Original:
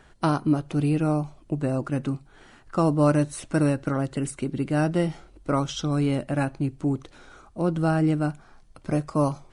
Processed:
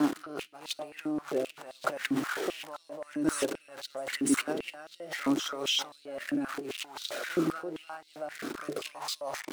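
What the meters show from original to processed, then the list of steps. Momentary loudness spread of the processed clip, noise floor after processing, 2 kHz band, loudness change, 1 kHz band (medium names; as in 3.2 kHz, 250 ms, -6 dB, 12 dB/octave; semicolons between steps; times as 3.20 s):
12 LU, -59 dBFS, 0.0 dB, -8.0 dB, -8.0 dB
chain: jump at every zero crossing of -34 dBFS; reverse echo 299 ms -9.5 dB; compressor with a negative ratio -31 dBFS, ratio -1; rotary cabinet horn 0.85 Hz; step-sequenced high-pass 7.6 Hz 290–3900 Hz; trim -1.5 dB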